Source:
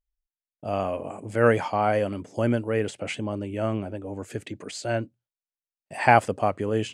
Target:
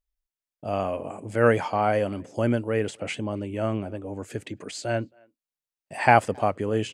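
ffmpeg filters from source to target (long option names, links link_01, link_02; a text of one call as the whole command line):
ffmpeg -i in.wav -filter_complex "[0:a]asplit=2[link_01][link_02];[link_02]adelay=270,highpass=300,lowpass=3400,asoftclip=type=hard:threshold=-12.5dB,volume=-29dB[link_03];[link_01][link_03]amix=inputs=2:normalize=0" out.wav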